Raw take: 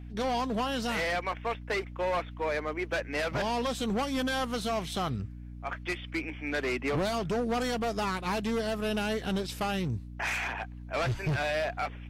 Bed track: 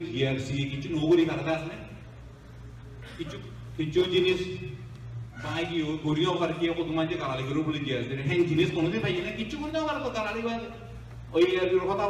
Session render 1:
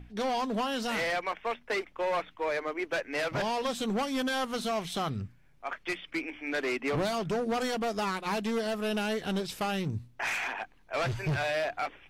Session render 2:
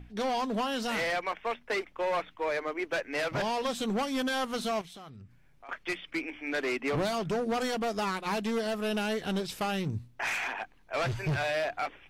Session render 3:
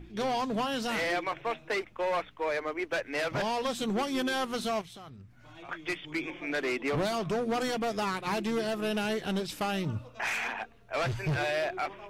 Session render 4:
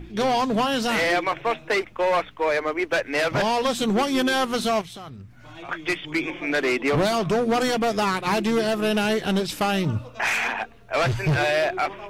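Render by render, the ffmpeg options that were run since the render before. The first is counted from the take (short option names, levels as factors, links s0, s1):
-af "bandreject=f=60:t=h:w=6,bandreject=f=120:t=h:w=6,bandreject=f=180:t=h:w=6,bandreject=f=240:t=h:w=6,bandreject=f=300:t=h:w=6"
-filter_complex "[0:a]asettb=1/sr,asplit=3[s0][s1][s2];[s0]atrim=end=4.814[s3];[s1]atrim=start=4.81:end=5.69,asetpts=PTS-STARTPTS,afade=t=in:d=0.004:c=qsin,afade=t=out:st=0.876:d=0.004:c=qsin,acompressor=threshold=0.00398:ratio=4:attack=3.2:release=140:knee=1:detection=peak[s4];[s2]atrim=start=5.686[s5];[s3][s4]acrossfade=d=0.004:c1=hsin:c2=qsin[s6];[s6][s5]acrossfade=d=0.004:c1=qsin:c2=hsin"
-filter_complex "[1:a]volume=0.1[s0];[0:a][s0]amix=inputs=2:normalize=0"
-af "volume=2.66"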